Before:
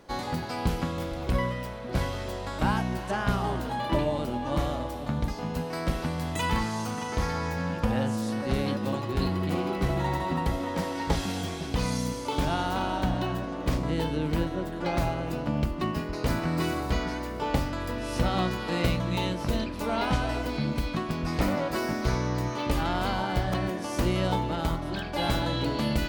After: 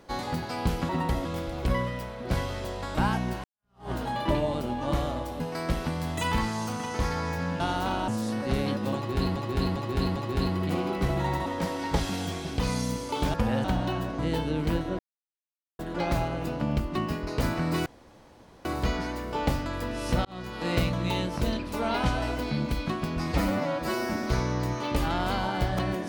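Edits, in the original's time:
3.08–3.55 fade in exponential
5.04–5.58 cut
7.78–8.08 swap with 12.5–12.98
8.96–9.36 loop, 4 plays
10.26–10.62 move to 0.89
13.53–13.85 cut
14.65 insert silence 0.80 s
16.72 insert room tone 0.79 s
18.32–18.79 fade in
21.34–21.98 stretch 1.5×

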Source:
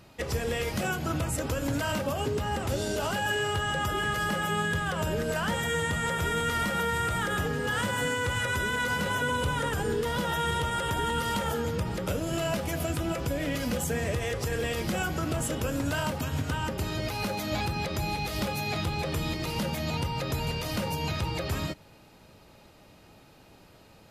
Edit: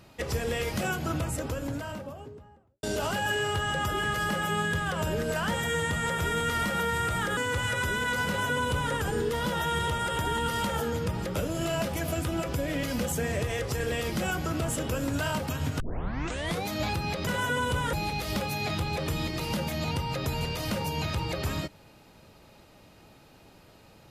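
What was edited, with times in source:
0.94–2.83 studio fade out
7.37–8.09 cut
8.99–9.65 copy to 17.99
16.52 tape start 0.87 s

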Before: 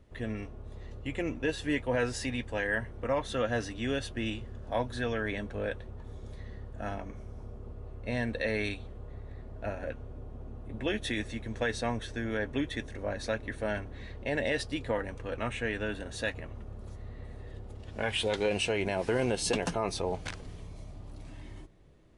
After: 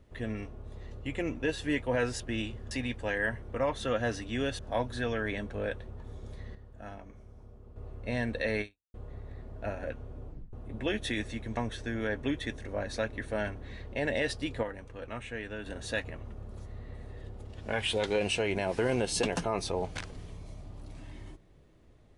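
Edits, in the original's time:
4.08–4.59 move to 2.2
6.55–7.76 gain -8 dB
8.61–8.94 fade out exponential
10.26 tape stop 0.27 s
11.57–11.87 cut
14.93–15.96 gain -6 dB

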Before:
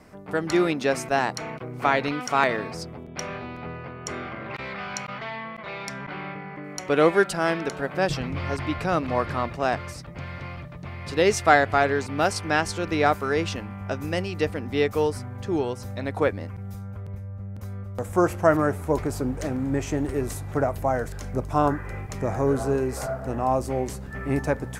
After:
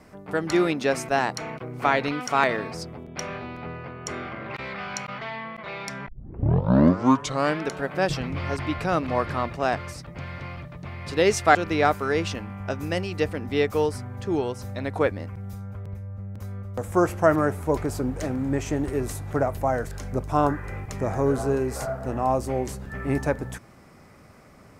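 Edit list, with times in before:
6.08 tape start 1.56 s
11.55–12.76 cut

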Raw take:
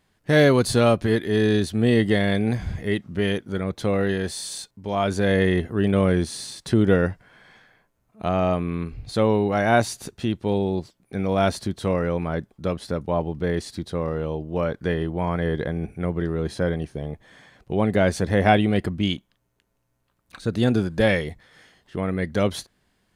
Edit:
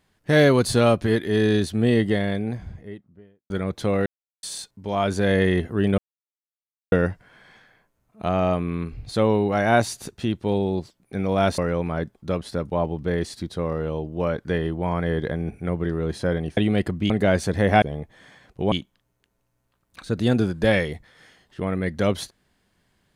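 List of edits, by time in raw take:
1.63–3.5 studio fade out
4.06–4.43 mute
5.98–6.92 mute
11.58–11.94 cut
16.93–17.83 swap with 18.55–19.08

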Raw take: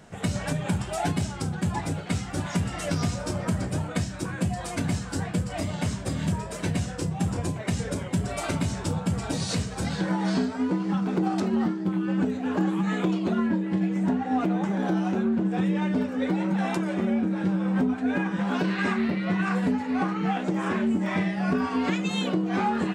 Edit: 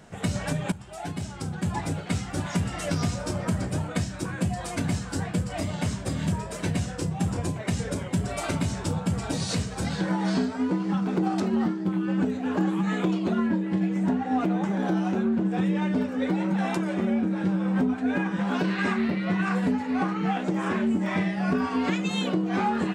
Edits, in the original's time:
0.72–1.83 fade in, from -16.5 dB

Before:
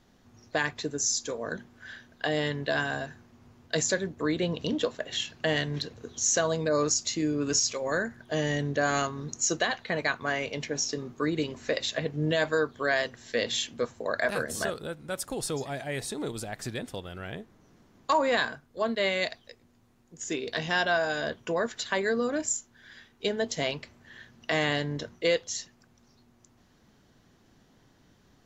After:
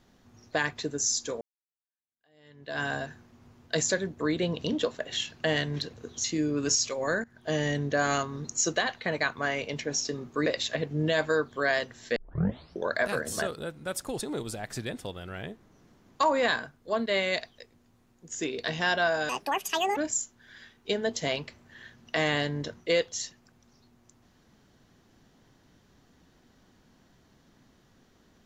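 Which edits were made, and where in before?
1.41–2.84 fade in exponential
6.24–7.08 cut
8.08–8.35 fade in, from -17 dB
11.3–11.69 cut
13.39 tape start 0.76 s
15.44–16.1 cut
21.18–22.32 speed 168%

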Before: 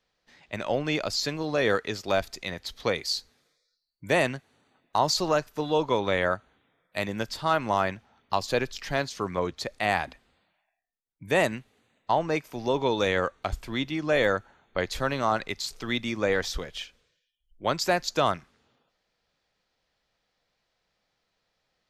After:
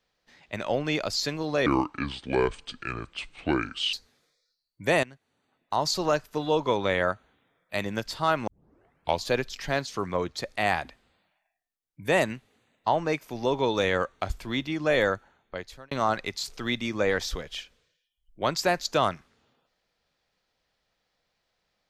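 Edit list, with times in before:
1.66–3.16 speed 66%
4.26–5.36 fade in, from -17.5 dB
7.7 tape start 0.77 s
14.28–15.14 fade out

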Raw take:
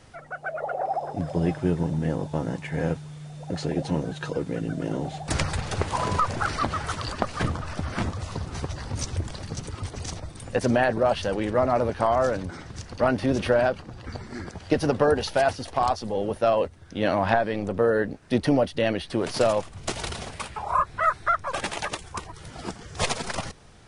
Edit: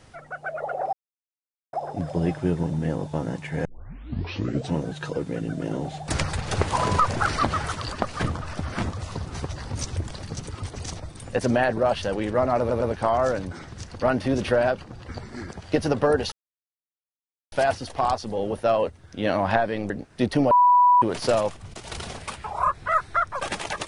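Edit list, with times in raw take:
0.93 insert silence 0.80 s
2.85 tape start 1.10 s
5.68–6.88 gain +3 dB
11.79 stutter 0.11 s, 3 plays
15.3 insert silence 1.20 s
17.68–18.02 cut
18.63–19.14 bleep 984 Hz -12.5 dBFS
19.86–20.16 fade in linear, from -14.5 dB

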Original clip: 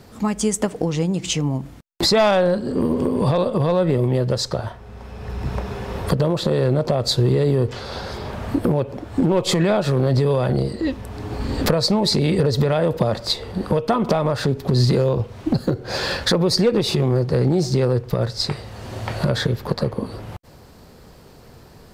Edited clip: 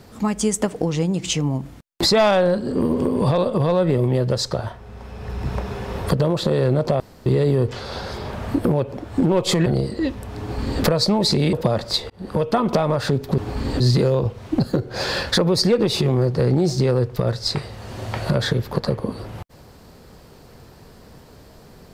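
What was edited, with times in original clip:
7–7.26 room tone
9.66–10.48 cut
11.22–11.64 copy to 14.74
12.35–12.89 cut
13.46–13.8 fade in

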